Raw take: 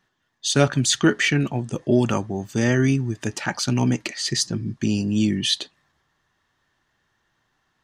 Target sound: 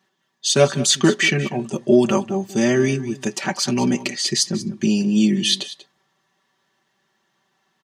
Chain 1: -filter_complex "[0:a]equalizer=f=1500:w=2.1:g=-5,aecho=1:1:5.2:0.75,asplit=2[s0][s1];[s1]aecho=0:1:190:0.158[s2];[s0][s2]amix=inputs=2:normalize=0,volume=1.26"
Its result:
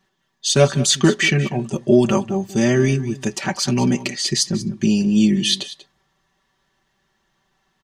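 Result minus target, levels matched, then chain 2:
125 Hz band +3.5 dB
-filter_complex "[0:a]highpass=170,equalizer=f=1500:w=2.1:g=-5,aecho=1:1:5.2:0.75,asplit=2[s0][s1];[s1]aecho=0:1:190:0.158[s2];[s0][s2]amix=inputs=2:normalize=0,volume=1.26"

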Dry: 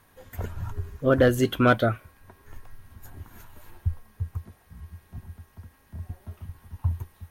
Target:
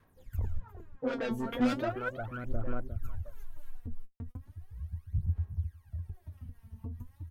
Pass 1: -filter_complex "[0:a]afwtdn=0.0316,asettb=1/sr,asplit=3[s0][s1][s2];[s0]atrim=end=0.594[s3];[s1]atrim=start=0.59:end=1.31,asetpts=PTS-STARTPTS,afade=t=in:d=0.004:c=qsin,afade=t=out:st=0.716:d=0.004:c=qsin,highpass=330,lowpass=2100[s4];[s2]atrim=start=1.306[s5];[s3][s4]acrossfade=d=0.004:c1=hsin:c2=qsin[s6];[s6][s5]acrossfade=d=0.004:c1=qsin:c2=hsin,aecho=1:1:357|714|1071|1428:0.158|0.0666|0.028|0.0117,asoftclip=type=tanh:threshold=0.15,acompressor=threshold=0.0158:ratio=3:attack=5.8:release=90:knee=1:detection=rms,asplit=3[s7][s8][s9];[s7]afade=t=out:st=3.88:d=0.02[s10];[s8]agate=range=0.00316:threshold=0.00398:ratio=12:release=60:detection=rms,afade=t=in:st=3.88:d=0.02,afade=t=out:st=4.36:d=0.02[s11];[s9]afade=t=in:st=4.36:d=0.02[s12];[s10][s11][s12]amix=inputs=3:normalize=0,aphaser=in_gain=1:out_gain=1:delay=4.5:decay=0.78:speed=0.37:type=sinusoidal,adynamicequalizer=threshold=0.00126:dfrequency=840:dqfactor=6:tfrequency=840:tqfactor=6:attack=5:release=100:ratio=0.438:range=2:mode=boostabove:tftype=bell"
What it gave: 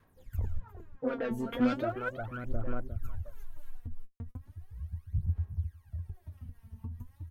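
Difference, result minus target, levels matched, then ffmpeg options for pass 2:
saturation: distortion -7 dB
-filter_complex "[0:a]afwtdn=0.0316,asettb=1/sr,asplit=3[s0][s1][s2];[s0]atrim=end=0.594[s3];[s1]atrim=start=0.59:end=1.31,asetpts=PTS-STARTPTS,afade=t=in:d=0.004:c=qsin,afade=t=out:st=0.716:d=0.004:c=qsin,highpass=330,lowpass=2100[s4];[s2]atrim=start=1.306[s5];[s3][s4]acrossfade=d=0.004:c1=hsin:c2=qsin[s6];[s6][s5]acrossfade=d=0.004:c1=qsin:c2=hsin,aecho=1:1:357|714|1071|1428:0.158|0.0666|0.028|0.0117,asoftclip=type=tanh:threshold=0.0668,acompressor=threshold=0.0158:ratio=3:attack=5.8:release=90:knee=1:detection=rms,asplit=3[s7][s8][s9];[s7]afade=t=out:st=3.88:d=0.02[s10];[s8]agate=range=0.00316:threshold=0.00398:ratio=12:release=60:detection=rms,afade=t=in:st=3.88:d=0.02,afade=t=out:st=4.36:d=0.02[s11];[s9]afade=t=in:st=4.36:d=0.02[s12];[s10][s11][s12]amix=inputs=3:normalize=0,aphaser=in_gain=1:out_gain=1:delay=4.5:decay=0.78:speed=0.37:type=sinusoidal,adynamicequalizer=threshold=0.00126:dfrequency=840:dqfactor=6:tfrequency=840:tqfactor=6:attack=5:release=100:ratio=0.438:range=2:mode=boostabove:tftype=bell"

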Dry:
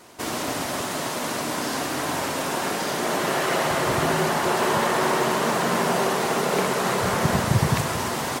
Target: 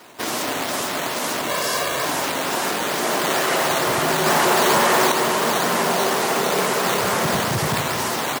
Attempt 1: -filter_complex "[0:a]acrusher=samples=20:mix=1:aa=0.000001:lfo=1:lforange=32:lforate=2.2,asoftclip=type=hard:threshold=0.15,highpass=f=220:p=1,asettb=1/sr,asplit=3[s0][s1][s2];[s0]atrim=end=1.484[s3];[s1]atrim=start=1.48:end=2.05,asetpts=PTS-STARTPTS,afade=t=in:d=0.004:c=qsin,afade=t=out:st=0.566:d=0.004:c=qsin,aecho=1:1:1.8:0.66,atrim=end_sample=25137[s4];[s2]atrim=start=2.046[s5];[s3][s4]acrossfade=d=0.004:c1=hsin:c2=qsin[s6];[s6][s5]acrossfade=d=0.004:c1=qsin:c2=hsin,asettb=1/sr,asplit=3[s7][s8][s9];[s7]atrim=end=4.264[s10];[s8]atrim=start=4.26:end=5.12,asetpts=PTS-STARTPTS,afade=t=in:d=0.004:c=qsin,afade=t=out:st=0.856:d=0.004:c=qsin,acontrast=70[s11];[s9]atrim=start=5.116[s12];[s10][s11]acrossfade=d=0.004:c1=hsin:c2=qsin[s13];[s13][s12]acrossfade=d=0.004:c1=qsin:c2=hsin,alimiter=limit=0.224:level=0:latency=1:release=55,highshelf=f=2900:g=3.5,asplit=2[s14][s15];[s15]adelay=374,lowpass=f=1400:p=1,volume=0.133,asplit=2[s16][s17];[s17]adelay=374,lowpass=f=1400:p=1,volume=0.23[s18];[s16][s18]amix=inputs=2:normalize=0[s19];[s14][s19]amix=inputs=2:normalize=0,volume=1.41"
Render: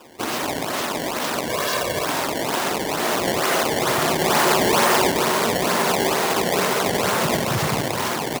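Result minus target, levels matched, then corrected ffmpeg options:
decimation with a swept rate: distortion +10 dB
-filter_complex "[0:a]acrusher=samples=5:mix=1:aa=0.000001:lfo=1:lforange=8:lforate=2.2,asoftclip=type=hard:threshold=0.15,highpass=f=220:p=1,asettb=1/sr,asplit=3[s0][s1][s2];[s0]atrim=end=1.484[s3];[s1]atrim=start=1.48:end=2.05,asetpts=PTS-STARTPTS,afade=t=in:d=0.004:c=qsin,afade=t=out:st=0.566:d=0.004:c=qsin,aecho=1:1:1.8:0.66,atrim=end_sample=25137[s4];[s2]atrim=start=2.046[s5];[s3][s4]acrossfade=d=0.004:c1=hsin:c2=qsin[s6];[s6][s5]acrossfade=d=0.004:c1=qsin:c2=hsin,asettb=1/sr,asplit=3[s7][s8][s9];[s7]atrim=end=4.264[s10];[s8]atrim=start=4.26:end=5.12,asetpts=PTS-STARTPTS,afade=t=in:d=0.004:c=qsin,afade=t=out:st=0.856:d=0.004:c=qsin,acontrast=70[s11];[s9]atrim=start=5.116[s12];[s10][s11]acrossfade=d=0.004:c1=hsin:c2=qsin[s13];[s13][s12]acrossfade=d=0.004:c1=qsin:c2=hsin,alimiter=limit=0.224:level=0:latency=1:release=55,highshelf=f=2900:g=3.5,asplit=2[s14][s15];[s15]adelay=374,lowpass=f=1400:p=1,volume=0.133,asplit=2[s16][s17];[s17]adelay=374,lowpass=f=1400:p=1,volume=0.23[s18];[s16][s18]amix=inputs=2:normalize=0[s19];[s14][s19]amix=inputs=2:normalize=0,volume=1.41"

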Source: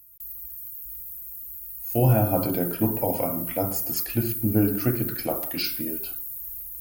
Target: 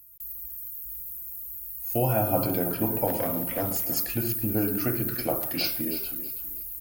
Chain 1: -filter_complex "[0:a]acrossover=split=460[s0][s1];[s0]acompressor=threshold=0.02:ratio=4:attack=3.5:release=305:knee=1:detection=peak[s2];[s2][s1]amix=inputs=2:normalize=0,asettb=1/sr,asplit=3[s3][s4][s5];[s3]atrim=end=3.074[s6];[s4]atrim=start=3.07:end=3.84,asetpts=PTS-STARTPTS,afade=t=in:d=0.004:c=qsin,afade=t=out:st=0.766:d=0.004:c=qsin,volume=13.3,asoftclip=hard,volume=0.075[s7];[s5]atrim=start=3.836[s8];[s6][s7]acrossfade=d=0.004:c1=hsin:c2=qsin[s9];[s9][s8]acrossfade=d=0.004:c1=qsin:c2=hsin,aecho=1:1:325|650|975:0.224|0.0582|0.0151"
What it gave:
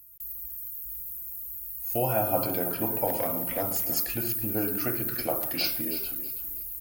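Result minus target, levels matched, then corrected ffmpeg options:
compression: peak gain reduction +6.5 dB
-filter_complex "[0:a]acrossover=split=460[s0][s1];[s0]acompressor=threshold=0.0531:ratio=4:attack=3.5:release=305:knee=1:detection=peak[s2];[s2][s1]amix=inputs=2:normalize=0,asettb=1/sr,asplit=3[s3][s4][s5];[s3]atrim=end=3.074[s6];[s4]atrim=start=3.07:end=3.84,asetpts=PTS-STARTPTS,afade=t=in:d=0.004:c=qsin,afade=t=out:st=0.766:d=0.004:c=qsin,volume=13.3,asoftclip=hard,volume=0.075[s7];[s5]atrim=start=3.836[s8];[s6][s7]acrossfade=d=0.004:c1=hsin:c2=qsin[s9];[s9][s8]acrossfade=d=0.004:c1=qsin:c2=hsin,aecho=1:1:325|650|975:0.224|0.0582|0.0151"

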